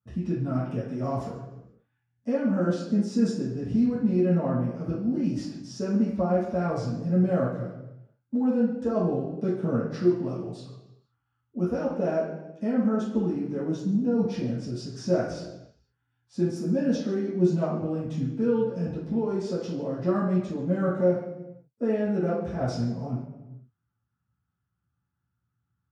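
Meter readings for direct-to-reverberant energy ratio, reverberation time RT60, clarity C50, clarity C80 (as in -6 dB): -9.5 dB, 1.1 s, 2.5 dB, 6.5 dB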